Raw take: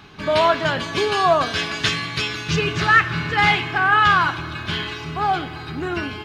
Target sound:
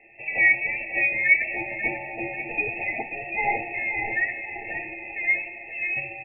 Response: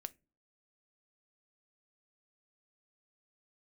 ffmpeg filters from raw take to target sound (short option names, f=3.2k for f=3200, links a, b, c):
-filter_complex "[0:a]aecho=1:1:541|1082|1623|2164|2705:0.316|0.139|0.0612|0.0269|0.0119,asplit=2[a][b];[1:a]atrim=start_sample=2205,adelay=9[c];[b][c]afir=irnorm=-1:irlink=0,volume=0dB[d];[a][d]amix=inputs=2:normalize=0,lowpass=f=2.5k:t=q:w=0.5098,lowpass=f=2.5k:t=q:w=0.6013,lowpass=f=2.5k:t=q:w=0.9,lowpass=f=2.5k:t=q:w=2.563,afreqshift=-2900,afftfilt=real='re*eq(mod(floor(b*sr/1024/900),2),0)':imag='im*eq(mod(floor(b*sr/1024/900),2),0)':win_size=1024:overlap=0.75,volume=-4.5dB"